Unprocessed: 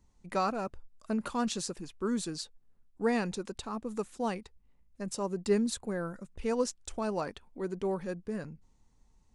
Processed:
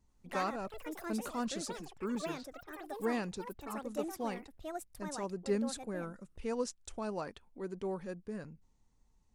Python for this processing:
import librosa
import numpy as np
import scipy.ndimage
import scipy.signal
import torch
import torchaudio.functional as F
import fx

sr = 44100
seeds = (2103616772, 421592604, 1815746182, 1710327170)

y = fx.env_lowpass(x, sr, base_hz=310.0, full_db=-29.0, at=(2.15, 3.67))
y = fx.echo_pitch(y, sr, ms=86, semitones=6, count=3, db_per_echo=-6.0)
y = fx.wow_flutter(y, sr, seeds[0], rate_hz=2.1, depth_cents=16.0)
y = y * 10.0 ** (-5.5 / 20.0)